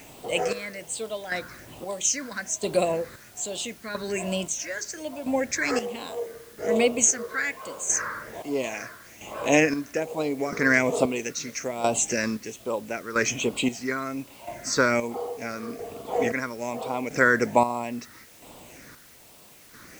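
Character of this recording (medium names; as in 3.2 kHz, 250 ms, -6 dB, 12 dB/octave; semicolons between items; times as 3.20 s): chopped level 0.76 Hz, depth 65%, duty 40%; phasing stages 6, 1.2 Hz, lowest notch 760–1700 Hz; a quantiser's noise floor 10-bit, dither triangular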